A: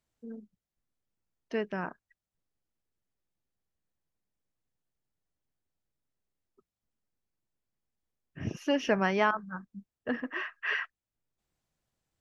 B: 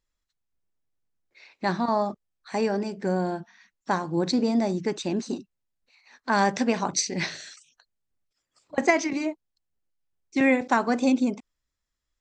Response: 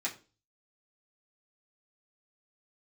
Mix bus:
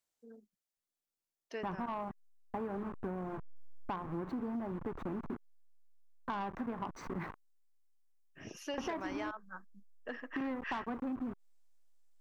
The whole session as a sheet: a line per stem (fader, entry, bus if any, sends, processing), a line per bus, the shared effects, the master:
−6.0 dB, 0.00 s, no send, bass and treble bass −14 dB, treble +7 dB
−4.5 dB, 0.00 s, no send, hold until the input has moved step −28.5 dBFS; drawn EQ curve 390 Hz 0 dB, 580 Hz −4 dB, 1,100 Hz +6 dB, 4,600 Hz −26 dB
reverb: not used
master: soft clipping −22 dBFS, distortion −14 dB; downward compressor, threshold −36 dBFS, peak gain reduction 10.5 dB

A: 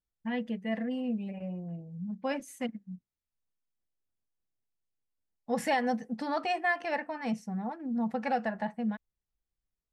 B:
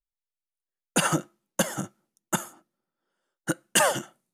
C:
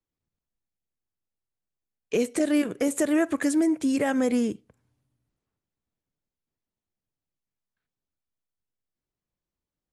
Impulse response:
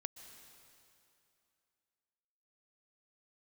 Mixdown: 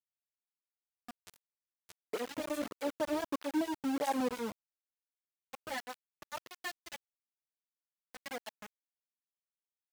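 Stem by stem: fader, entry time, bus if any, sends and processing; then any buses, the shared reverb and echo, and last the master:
−1.5 dB, 0.00 s, no send, parametric band 220 Hz −10 dB 0.31 octaves; two-band tremolo in antiphase 3.7 Hz, depth 100%, crossover 710 Hz
−19.5 dB, 0.30 s, no send, output level in coarse steps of 10 dB; parametric band 600 Hz −10 dB 2.3 octaves; phases set to zero 89.7 Hz
−8.5 dB, 0.00 s, no send, low-pass with resonance 930 Hz, resonance Q 4.9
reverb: not used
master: centre clipping without the shift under −32 dBFS; through-zero flanger with one copy inverted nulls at 1.6 Hz, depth 4.2 ms

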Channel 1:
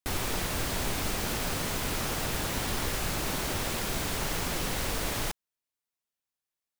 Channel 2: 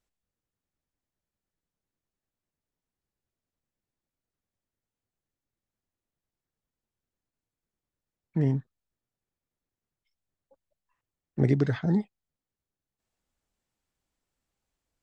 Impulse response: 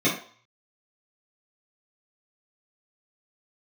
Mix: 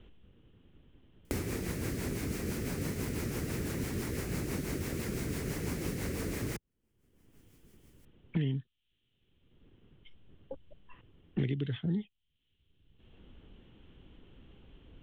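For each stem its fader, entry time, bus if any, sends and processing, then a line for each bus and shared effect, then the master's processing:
+1.5 dB, 1.25 s, no send, high-pass filter 65 Hz; high shelf with overshoot 2,700 Hz −8 dB, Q 3; rotating-speaker cabinet horn 6 Hz
+2.5 dB, 0.00 s, no send, elliptic low-pass filter 3,100 Hz, stop band 40 dB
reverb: not used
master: flat-topped bell 1,200 Hz −13 dB 2.4 octaves; multiband upward and downward compressor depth 100%

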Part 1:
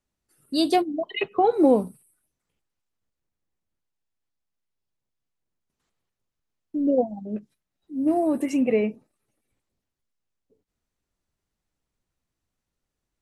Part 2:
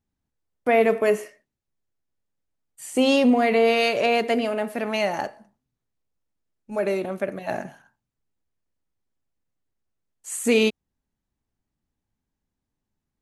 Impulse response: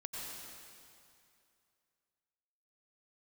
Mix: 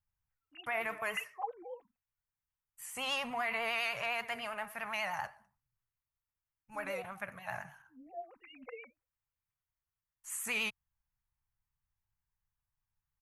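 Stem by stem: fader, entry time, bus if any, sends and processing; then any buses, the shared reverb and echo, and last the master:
−8.5 dB, 0.00 s, no send, three sine waves on the formant tracks; comb filter 3.9 ms, depth 47%
+1.0 dB, 0.00 s, no send, octave-band graphic EQ 125/250/500/1,000/4,000/8,000 Hz +7/−3/−10/+7/−12/−9 dB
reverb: not used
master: pitch vibrato 10 Hz 52 cents; guitar amp tone stack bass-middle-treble 10-0-10; brickwall limiter −25 dBFS, peak gain reduction 5.5 dB

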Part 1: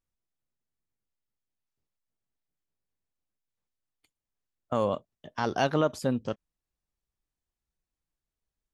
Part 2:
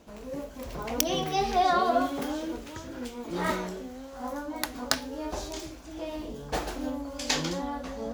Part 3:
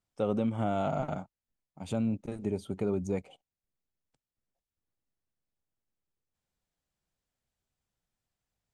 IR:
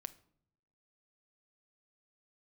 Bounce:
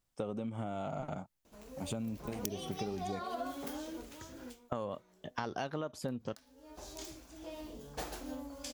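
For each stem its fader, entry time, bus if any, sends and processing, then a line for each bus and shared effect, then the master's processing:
+1.5 dB, 0.00 s, no send, no processing
−10.0 dB, 1.45 s, no send, high-shelf EQ 6,500 Hz +9.5 dB; automatic ducking −20 dB, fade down 0.25 s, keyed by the first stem
+0.5 dB, 0.00 s, no send, high-shelf EQ 5,200 Hz +6 dB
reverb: not used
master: downward compressor 12 to 1, threshold −34 dBFS, peak gain reduction 16 dB

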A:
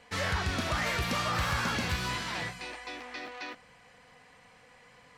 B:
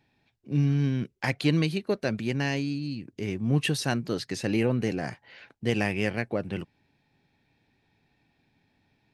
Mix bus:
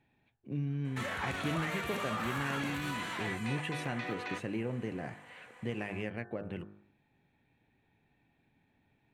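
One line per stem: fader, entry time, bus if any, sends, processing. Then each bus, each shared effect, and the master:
+2.5 dB, 0.85 s, no send, high-pass filter 310 Hz 6 dB per octave; brickwall limiter −31 dBFS, peak gain reduction 9.5 dB
−2.0 dB, 0.00 s, no send, high-shelf EQ 8,500 Hz −11.5 dB; hum removal 50.99 Hz, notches 35; downward compressor 2 to 1, threshold −37 dBFS, peak gain reduction 10 dB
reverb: not used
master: parametric band 5,000 Hz −14.5 dB 0.58 octaves

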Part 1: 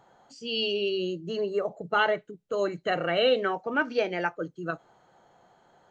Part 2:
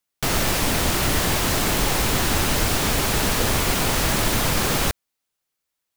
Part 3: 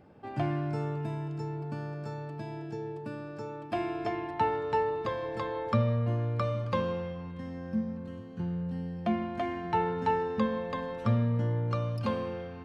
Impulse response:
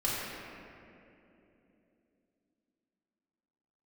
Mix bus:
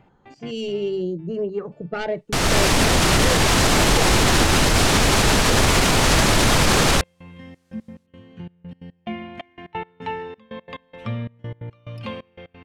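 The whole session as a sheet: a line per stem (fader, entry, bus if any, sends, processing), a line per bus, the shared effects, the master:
−0.5 dB, 0.00 s, no send, phase distortion by the signal itself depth 0.096 ms; spectral tilt −3.5 dB per octave; auto-filter notch saw up 0.67 Hz 510–4,700 Hz
+1.0 dB, 2.10 s, no send, low-pass filter 8,600 Hz 12 dB per octave; automatic gain control gain up to 13 dB
−1.5 dB, 0.00 s, no send, flat-topped bell 2,600 Hz +10 dB 1.1 octaves; gate pattern "x..x.x..xxx" 177 BPM −24 dB; automatic ducking −20 dB, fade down 1.40 s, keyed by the first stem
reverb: not used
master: brickwall limiter −7 dBFS, peak gain reduction 7 dB

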